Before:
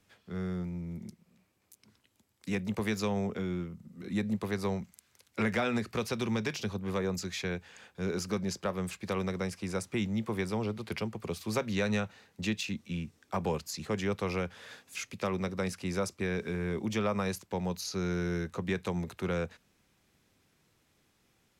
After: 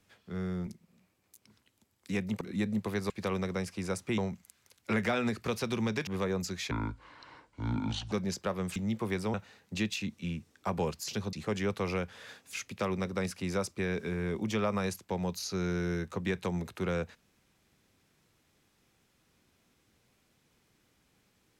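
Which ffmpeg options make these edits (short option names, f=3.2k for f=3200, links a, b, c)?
-filter_complex "[0:a]asplit=12[a][b][c][d][e][f][g][h][i][j][k][l];[a]atrim=end=0.672[m];[b]atrim=start=1.048:end=2.792[n];[c]atrim=start=3.978:end=4.672[o];[d]atrim=start=8.948:end=10.032[p];[e]atrim=start=4.668:end=6.562[q];[f]atrim=start=6.808:end=7.454[r];[g]atrim=start=7.45:end=8.31,asetpts=PTS-STARTPTS,asetrate=26901,aresample=44100[s];[h]atrim=start=8.306:end=8.952[t];[i]atrim=start=10.028:end=10.612[u];[j]atrim=start=12.008:end=13.752[v];[k]atrim=start=6.558:end=6.812[w];[l]atrim=start=13.748[x];[m][n]acrossfade=d=0.004:c1=hsin:c2=hsin[y];[y][o]acrossfade=d=0.004:c1=hsin:c2=hsin[z];[z][p]acrossfade=d=0.004:c1=hsin:c2=hsin[aa];[aa][q]acrossfade=d=0.004:c1=hsin:c2=hsin[ab];[ab][r]acrossfade=d=0.004:c1=hsin:c2=hsin[ac];[ac][s]acrossfade=d=0.004:c1=hsin:c2=hsin[ad];[ad][t]acrossfade=d=0.004:c1=hsin:c2=hsin[ae];[ae][u]acrossfade=d=0.004:c1=hsin:c2=hsin[af];[af][v]acrossfade=d=0.004:c1=hsin:c2=hsin[ag];[ag][w]acrossfade=d=0.004:c1=hsin:c2=hsin[ah];[ah][x]acrossfade=d=0.004:c1=hsin:c2=hsin"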